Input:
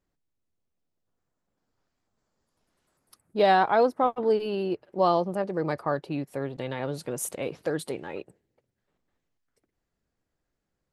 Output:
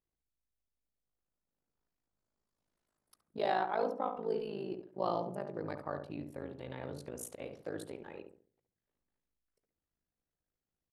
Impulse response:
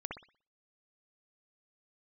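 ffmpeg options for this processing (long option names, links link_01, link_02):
-filter_complex "[0:a]asettb=1/sr,asplit=3[link_01][link_02][link_03];[link_01]atrim=end=3.384[link_04];[link_02]atrim=start=3.38:end=3.83,asetpts=PTS-STARTPTS,afade=type=in:duration=0.004:curve=qsin,afade=type=out:start_time=0.446:duration=0.004:curve=qsin,highpass=240[link_05];[link_03]atrim=start=3.826[link_06];[link_04][link_05]acrossfade=duration=0.004:curve1=hsin:curve2=qsin[link_07];[link_07][link_06]acrossfade=duration=0.004:curve1=qsin:curve2=hsin,tremolo=f=53:d=0.974,asplit=2[link_08][link_09];[link_09]adelay=69,lowpass=frequency=1100:poles=1,volume=-5dB,asplit=2[link_10][link_11];[link_11]adelay=69,lowpass=frequency=1100:poles=1,volume=0.38,asplit=2[link_12][link_13];[link_13]adelay=69,lowpass=frequency=1100:poles=1,volume=0.38,asplit=2[link_14][link_15];[link_15]adelay=69,lowpass=frequency=1100:poles=1,volume=0.38,asplit=2[link_16][link_17];[link_17]adelay=69,lowpass=frequency=1100:poles=1,volume=0.38[link_18];[link_08][link_10][link_12][link_14][link_16][link_18]amix=inputs=6:normalize=0,volume=-8.5dB"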